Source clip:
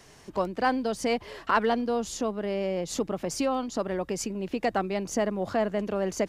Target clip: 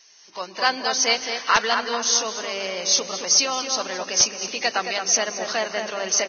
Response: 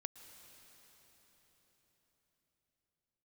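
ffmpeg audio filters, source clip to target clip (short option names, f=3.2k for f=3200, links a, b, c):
-filter_complex "[0:a]aderivative,bandreject=f=50:t=h:w=6,bandreject=f=100:t=h:w=6,bandreject=f=150:t=h:w=6,bandreject=f=200:t=h:w=6,bandreject=f=250:t=h:w=6,bandreject=f=300:t=h:w=6,bandreject=f=350:t=h:w=6,bandreject=f=400:t=h:w=6,asplit=2[a][b];[b]adelay=220,lowpass=f=2k:p=1,volume=-5.5dB,asplit=2[c][d];[d]adelay=220,lowpass=f=2k:p=1,volume=0.46,asplit=2[e][f];[f]adelay=220,lowpass=f=2k:p=1,volume=0.46,asplit=2[g][h];[h]adelay=220,lowpass=f=2k:p=1,volume=0.46,asplit=2[i][j];[j]adelay=220,lowpass=f=2k:p=1,volume=0.46,asplit=2[k][l];[l]adelay=220,lowpass=f=2k:p=1,volume=0.46[m];[a][c][e][g][i][k][m]amix=inputs=7:normalize=0,aeval=exprs='(mod(15*val(0)+1,2)-1)/15':c=same,asplit=2[n][o];[1:a]atrim=start_sample=2205[p];[o][p]afir=irnorm=-1:irlink=0,volume=2dB[q];[n][q]amix=inputs=2:normalize=0,dynaudnorm=f=120:g=7:m=14dB,volume=2dB" -ar 16000 -c:a libvorbis -b:a 16k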